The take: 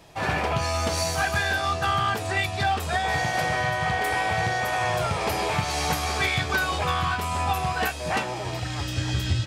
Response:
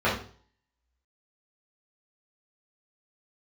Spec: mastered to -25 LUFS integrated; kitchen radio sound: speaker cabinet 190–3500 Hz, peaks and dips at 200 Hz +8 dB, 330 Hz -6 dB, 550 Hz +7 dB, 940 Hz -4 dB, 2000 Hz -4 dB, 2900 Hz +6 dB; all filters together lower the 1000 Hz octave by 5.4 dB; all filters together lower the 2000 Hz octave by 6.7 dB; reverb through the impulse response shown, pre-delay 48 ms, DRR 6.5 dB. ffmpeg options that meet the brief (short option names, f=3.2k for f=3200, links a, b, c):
-filter_complex "[0:a]equalizer=f=1k:t=o:g=-6,equalizer=f=2k:t=o:g=-5.5,asplit=2[a][b];[1:a]atrim=start_sample=2205,adelay=48[c];[b][c]afir=irnorm=-1:irlink=0,volume=-22.5dB[d];[a][d]amix=inputs=2:normalize=0,highpass=190,equalizer=f=200:t=q:w=4:g=8,equalizer=f=330:t=q:w=4:g=-6,equalizer=f=550:t=q:w=4:g=7,equalizer=f=940:t=q:w=4:g=-4,equalizer=f=2k:t=q:w=4:g=-4,equalizer=f=2.9k:t=q:w=4:g=6,lowpass=f=3.5k:w=0.5412,lowpass=f=3.5k:w=1.3066,volume=3.5dB"